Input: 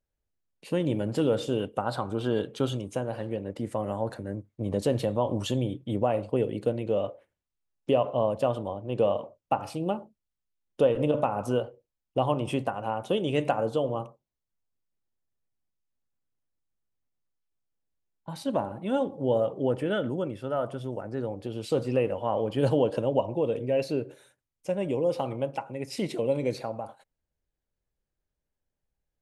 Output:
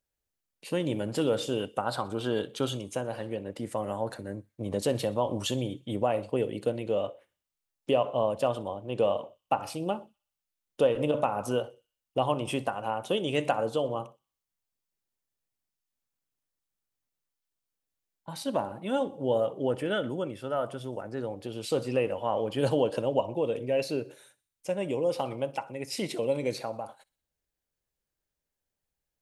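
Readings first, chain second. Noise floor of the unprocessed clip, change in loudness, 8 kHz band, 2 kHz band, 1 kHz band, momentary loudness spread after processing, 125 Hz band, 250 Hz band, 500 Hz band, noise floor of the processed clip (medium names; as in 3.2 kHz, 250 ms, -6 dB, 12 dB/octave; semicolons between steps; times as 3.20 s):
under -85 dBFS, -1.5 dB, no reading, +1.5 dB, -0.5 dB, 9 LU, -4.5 dB, -3.0 dB, -1.5 dB, under -85 dBFS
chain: tilt EQ +1.5 dB/octave; on a send: feedback echo behind a high-pass 62 ms, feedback 48%, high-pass 2.5 kHz, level -20 dB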